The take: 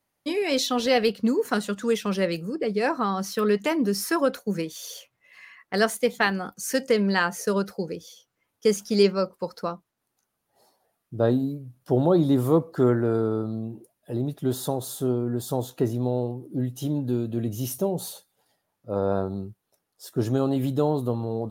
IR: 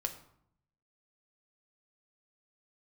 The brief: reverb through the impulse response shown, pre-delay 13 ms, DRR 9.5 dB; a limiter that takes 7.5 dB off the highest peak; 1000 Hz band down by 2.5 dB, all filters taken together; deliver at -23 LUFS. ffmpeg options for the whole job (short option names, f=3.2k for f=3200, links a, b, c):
-filter_complex "[0:a]equalizer=f=1k:t=o:g=-3.5,alimiter=limit=-15dB:level=0:latency=1,asplit=2[a][b];[1:a]atrim=start_sample=2205,adelay=13[c];[b][c]afir=irnorm=-1:irlink=0,volume=-10.5dB[d];[a][d]amix=inputs=2:normalize=0,volume=4dB"